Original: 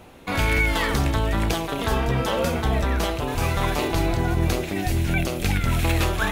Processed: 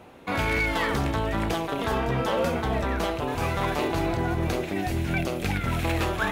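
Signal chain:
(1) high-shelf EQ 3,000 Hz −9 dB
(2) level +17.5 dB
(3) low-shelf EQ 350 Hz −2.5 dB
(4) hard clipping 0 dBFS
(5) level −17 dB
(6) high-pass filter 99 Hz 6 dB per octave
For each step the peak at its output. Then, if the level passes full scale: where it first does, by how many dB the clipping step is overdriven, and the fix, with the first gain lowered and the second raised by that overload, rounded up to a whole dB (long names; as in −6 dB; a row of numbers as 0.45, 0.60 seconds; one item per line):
−7.5, +10.0, +9.0, 0.0, −17.0, −14.0 dBFS
step 2, 9.0 dB
step 2 +8.5 dB, step 5 −8 dB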